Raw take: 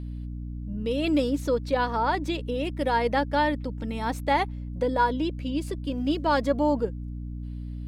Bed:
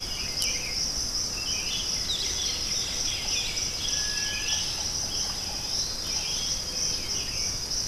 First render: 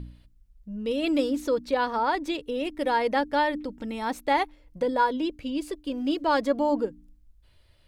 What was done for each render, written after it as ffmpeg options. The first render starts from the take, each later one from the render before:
ffmpeg -i in.wav -af "bandreject=frequency=60:width_type=h:width=4,bandreject=frequency=120:width_type=h:width=4,bandreject=frequency=180:width_type=h:width=4,bandreject=frequency=240:width_type=h:width=4,bandreject=frequency=300:width_type=h:width=4" out.wav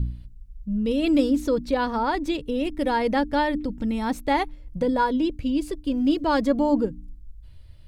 ffmpeg -i in.wav -af "bass=frequency=250:gain=15,treble=frequency=4000:gain=2" out.wav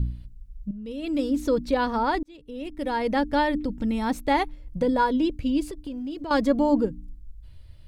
ffmpeg -i in.wav -filter_complex "[0:a]asettb=1/sr,asplit=3[link_01][link_02][link_03];[link_01]atrim=end=5.704[link_04];[link_02]atrim=start=5.7:end=6.31,asetpts=PTS-STARTPTS,afade=type=in:duration=0.004:curve=qsin,afade=type=out:start_time=0.606:duration=0.004:curve=qsin,acompressor=threshold=-32dB:ratio=4:attack=3.2:release=140:knee=1:detection=peak[link_05];[link_03]atrim=start=6.306[link_06];[link_04][link_05]acrossfade=duration=0.004:curve1=hsin:curve2=qsin[link_07];[link_07][link_06]acrossfade=duration=0.004:curve1=qsin:curve2=hsin,asplit=3[link_08][link_09][link_10];[link_08]atrim=end=0.71,asetpts=PTS-STARTPTS,afade=type=out:start_time=0.706:duration=0.004:curve=hsin:silence=0.223872[link_11];[link_09]atrim=start=0.71:end=2.23,asetpts=PTS-STARTPTS,afade=type=in:duration=0.79:curve=qua:silence=0.223872,afade=type=out:start_time=1.516:duration=0.004:curve=hsin[link_12];[link_10]atrim=start=2.23,asetpts=PTS-STARTPTS,afade=type=in:duration=1.08[link_13];[link_11][link_12][link_13]concat=n=3:v=0:a=1" out.wav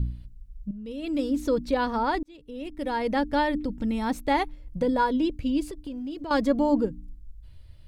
ffmpeg -i in.wav -af "volume=-1.5dB" out.wav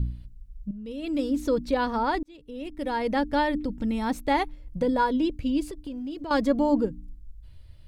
ffmpeg -i in.wav -af anull out.wav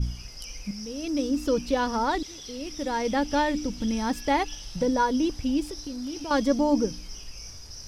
ffmpeg -i in.wav -i bed.wav -filter_complex "[1:a]volume=-14dB[link_01];[0:a][link_01]amix=inputs=2:normalize=0" out.wav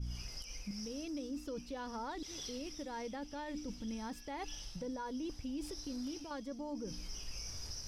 ffmpeg -i in.wav -af "areverse,acompressor=threshold=-34dB:ratio=6,areverse,alimiter=level_in=10dB:limit=-24dB:level=0:latency=1:release=272,volume=-10dB" out.wav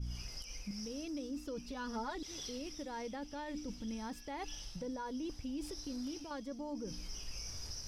ffmpeg -i in.wav -filter_complex "[0:a]asettb=1/sr,asplit=3[link_01][link_02][link_03];[link_01]atrim=end=1.644[link_04];[link_02]atrim=start=1.64:end=2.17,asetpts=PTS-STARTPTS,afade=type=in:duration=0.004:curve=qsin,afade=type=out:start_time=0.526:duration=0.004:curve=qsin,aecho=1:1:4.8:0.79,atrim=end_sample=23373[link_05];[link_03]atrim=start=2.166[link_06];[link_04][link_05]acrossfade=duration=0.004:curve1=hsin:curve2=qsin[link_07];[link_07][link_06]acrossfade=duration=0.004:curve1=qsin:curve2=hsin" out.wav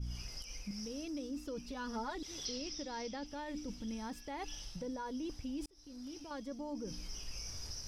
ffmpeg -i in.wav -filter_complex "[0:a]asettb=1/sr,asplit=3[link_01][link_02][link_03];[link_01]atrim=end=2.454[link_04];[link_02]atrim=start=2.45:end=3.26,asetpts=PTS-STARTPTS,afade=type=in:duration=0.004:curve=qsin,afade=type=out:start_time=0.806:duration=0.004:curve=qsin,lowpass=frequency=5200:width_type=q:width=2.3[link_05];[link_03]atrim=start=3.256[link_06];[link_04][link_05]acrossfade=duration=0.004:curve1=hsin:curve2=qsin[link_07];[link_07][link_06]acrossfade=duration=0.004:curve1=qsin:curve2=hsin,asplit=2[link_08][link_09];[link_08]atrim=end=5.66,asetpts=PTS-STARTPTS,afade=type=out:start_time=5.656:duration=0.004:curve=hsin[link_10];[link_09]atrim=start=5.66,asetpts=PTS-STARTPTS,afade=type=in:duration=0.75[link_11];[link_10][link_11]concat=n=2:v=0:a=1" out.wav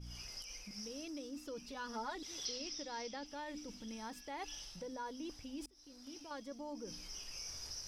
ffmpeg -i in.wav -af "lowshelf=frequency=300:gain=-9.5,bandreject=frequency=50:width_type=h:width=6,bandreject=frequency=100:width_type=h:width=6,bandreject=frequency=150:width_type=h:width=6,bandreject=frequency=200:width_type=h:width=6,bandreject=frequency=250:width_type=h:width=6" out.wav

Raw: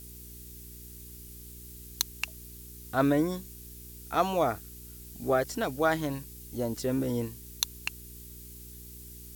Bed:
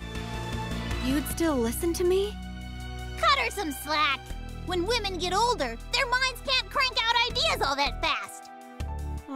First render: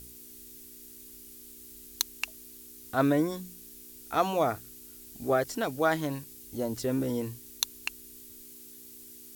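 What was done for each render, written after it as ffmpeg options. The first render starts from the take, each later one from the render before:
ffmpeg -i in.wav -af "bandreject=frequency=60:width_type=h:width=4,bandreject=frequency=120:width_type=h:width=4,bandreject=frequency=180:width_type=h:width=4" out.wav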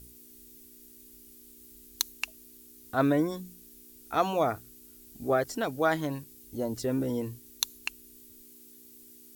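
ffmpeg -i in.wav -af "afftdn=noise_reduction=6:noise_floor=-49" out.wav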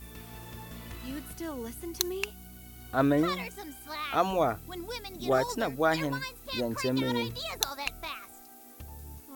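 ffmpeg -i in.wav -i bed.wav -filter_complex "[1:a]volume=-12dB[link_01];[0:a][link_01]amix=inputs=2:normalize=0" out.wav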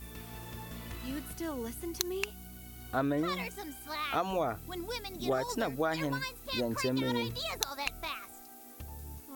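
ffmpeg -i in.wav -af "acompressor=threshold=-27dB:ratio=6" out.wav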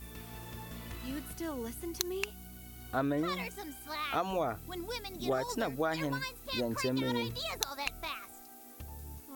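ffmpeg -i in.wav -af "volume=-1dB" out.wav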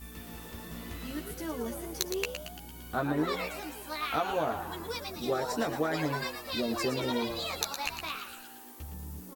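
ffmpeg -i in.wav -filter_complex "[0:a]asplit=2[link_01][link_02];[link_02]adelay=13,volume=-3.5dB[link_03];[link_01][link_03]amix=inputs=2:normalize=0,asplit=8[link_04][link_05][link_06][link_07][link_08][link_09][link_10][link_11];[link_05]adelay=114,afreqshift=110,volume=-8dB[link_12];[link_06]adelay=228,afreqshift=220,volume=-13.2dB[link_13];[link_07]adelay=342,afreqshift=330,volume=-18.4dB[link_14];[link_08]adelay=456,afreqshift=440,volume=-23.6dB[link_15];[link_09]adelay=570,afreqshift=550,volume=-28.8dB[link_16];[link_10]adelay=684,afreqshift=660,volume=-34dB[link_17];[link_11]adelay=798,afreqshift=770,volume=-39.2dB[link_18];[link_04][link_12][link_13][link_14][link_15][link_16][link_17][link_18]amix=inputs=8:normalize=0" out.wav

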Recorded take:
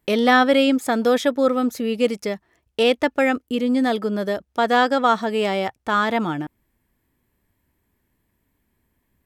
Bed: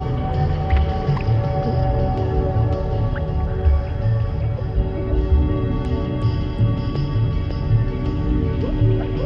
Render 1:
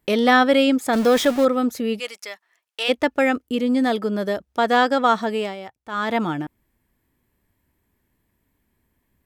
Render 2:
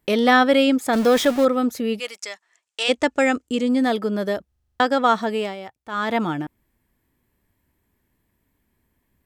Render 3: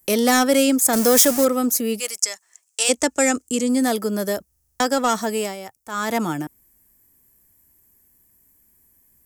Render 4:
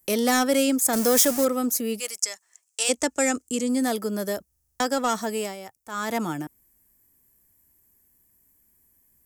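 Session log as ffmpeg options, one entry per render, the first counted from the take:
ffmpeg -i in.wav -filter_complex "[0:a]asettb=1/sr,asplit=3[link_01][link_02][link_03];[link_01]atrim=end=0.934[link_04];[link_02]atrim=start=0.93:end=1.45,asetpts=PTS-STARTPTS,afade=type=in:duration=0.004:curve=qsin,afade=type=out:start_time=0.516:duration=0.004:curve=qsin,aeval=exprs='val(0)+0.5*0.0631*sgn(val(0))':channel_layout=same[link_05];[link_03]atrim=start=1.446[link_06];[link_04][link_05]acrossfade=duration=0.004:curve1=hsin:curve2=qsin[link_07];[link_07][link_06]acrossfade=duration=0.004:curve1=qsin:curve2=hsin,asplit=3[link_08][link_09][link_10];[link_08]afade=type=out:start_time=1.98:duration=0.02[link_11];[link_09]highpass=1100,afade=type=in:start_time=1.98:duration=0.02,afade=type=out:start_time=2.88:duration=0.02[link_12];[link_10]afade=type=in:start_time=2.88:duration=0.02[link_13];[link_11][link_12][link_13]amix=inputs=3:normalize=0,asplit=3[link_14][link_15][link_16];[link_14]atrim=end=5.56,asetpts=PTS-STARTPTS,afade=type=out:start_time=5.3:duration=0.26:silence=0.251189[link_17];[link_15]atrim=start=5.56:end=5.89,asetpts=PTS-STARTPTS,volume=-12dB[link_18];[link_16]atrim=start=5.89,asetpts=PTS-STARTPTS,afade=type=in:duration=0.26:silence=0.251189[link_19];[link_17][link_18][link_19]concat=n=3:v=0:a=1" out.wav
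ffmpeg -i in.wav -filter_complex "[0:a]asettb=1/sr,asplit=3[link_01][link_02][link_03];[link_01]atrim=end=2.184[link_04];[link_02]atrim=start=2.18:end=3.69,asetpts=PTS-STARTPTS,afade=type=in:duration=0.004:curve=qsin,afade=type=out:start_time=1.506:duration=0.004:curve=qsin,lowpass=frequency=7600:width_type=q:width=3.1[link_05];[link_03]atrim=start=3.686[link_06];[link_04][link_05]acrossfade=duration=0.004:curve1=hsin:curve2=qsin[link_07];[link_07][link_06]acrossfade=duration=0.004:curve1=qsin:curve2=hsin,asplit=9[link_08][link_09][link_10][link_11][link_12][link_13][link_14][link_15][link_16];[link_08]atrim=end=4.522[link_17];[link_09]atrim=start=4.478:end=4.522[link_18];[link_10]atrim=start=4.478:end=4.522[link_19];[link_11]atrim=start=4.478:end=4.522[link_20];[link_12]atrim=start=4.478:end=4.522[link_21];[link_13]atrim=start=4.478:end=4.522[link_22];[link_14]atrim=start=4.478:end=4.522[link_23];[link_15]atrim=start=4.478:end=4.522[link_24];[link_16]atrim=start=4.798[link_25];[link_17][link_18]acrossfade=duration=0.004:curve1=hsin:curve2=hsin[link_26];[link_26][link_19]acrossfade=duration=0.004:curve1=hsin:curve2=hsin[link_27];[link_27][link_20]acrossfade=duration=0.004:curve1=hsin:curve2=hsin[link_28];[link_28][link_21]acrossfade=duration=0.004:curve1=hsin:curve2=hsin[link_29];[link_29][link_22]acrossfade=duration=0.004:curve1=hsin:curve2=hsin[link_30];[link_30][link_23]acrossfade=duration=0.004:curve1=hsin:curve2=hsin[link_31];[link_31][link_24]acrossfade=duration=0.004:curve1=hsin:curve2=hsin[link_32];[link_32][link_25]acrossfade=duration=0.004:curve1=hsin:curve2=hsin" out.wav
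ffmpeg -i in.wav -filter_complex "[0:a]acrossover=split=390|420|4400[link_01][link_02][link_03][link_04];[link_03]asoftclip=type=tanh:threshold=-15dB[link_05];[link_01][link_02][link_05][link_04]amix=inputs=4:normalize=0,aexciter=amount=9.4:drive=2.3:freq=5300" out.wav
ffmpeg -i in.wav -af "volume=-4.5dB" out.wav

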